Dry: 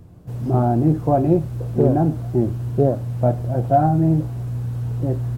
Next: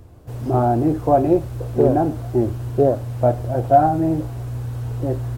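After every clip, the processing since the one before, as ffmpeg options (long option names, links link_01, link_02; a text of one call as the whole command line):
ffmpeg -i in.wav -af "equalizer=frequency=170:width=1.6:gain=-13.5,volume=4dB" out.wav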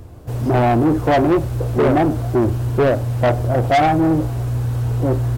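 ffmpeg -i in.wav -af "asoftclip=type=tanh:threshold=-18.5dB,aeval=exprs='0.119*(cos(1*acos(clip(val(0)/0.119,-1,1)))-cos(1*PI/2))+0.00211*(cos(7*acos(clip(val(0)/0.119,-1,1)))-cos(7*PI/2))':channel_layout=same,volume=7.5dB" out.wav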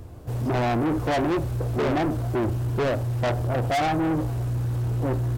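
ffmpeg -i in.wav -af "asoftclip=type=tanh:threshold=-18dB,volume=-3dB" out.wav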